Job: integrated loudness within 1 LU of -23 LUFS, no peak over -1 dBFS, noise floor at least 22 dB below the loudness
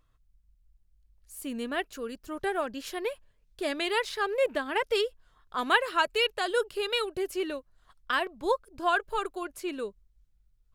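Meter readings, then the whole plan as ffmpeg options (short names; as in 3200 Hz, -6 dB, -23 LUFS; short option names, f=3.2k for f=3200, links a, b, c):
loudness -30.0 LUFS; peak -10.0 dBFS; loudness target -23.0 LUFS
-> -af "volume=7dB"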